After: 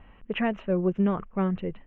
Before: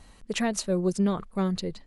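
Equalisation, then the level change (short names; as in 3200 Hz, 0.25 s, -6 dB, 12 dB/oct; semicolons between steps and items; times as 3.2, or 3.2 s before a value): elliptic low-pass 2900 Hz, stop band 40 dB; +1.5 dB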